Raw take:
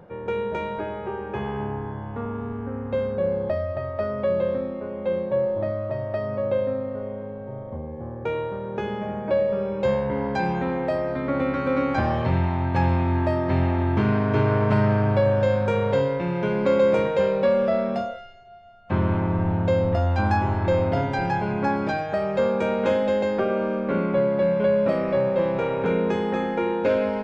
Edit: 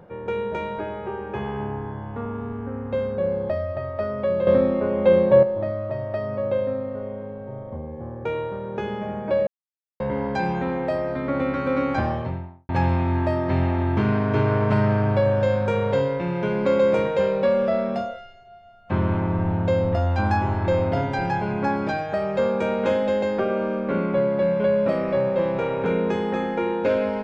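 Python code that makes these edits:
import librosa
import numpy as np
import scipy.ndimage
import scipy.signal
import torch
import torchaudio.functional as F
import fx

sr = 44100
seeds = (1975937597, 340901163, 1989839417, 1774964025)

y = fx.studio_fade_out(x, sr, start_s=11.9, length_s=0.79)
y = fx.edit(y, sr, fx.clip_gain(start_s=4.47, length_s=0.96, db=9.0),
    fx.silence(start_s=9.47, length_s=0.53), tone=tone)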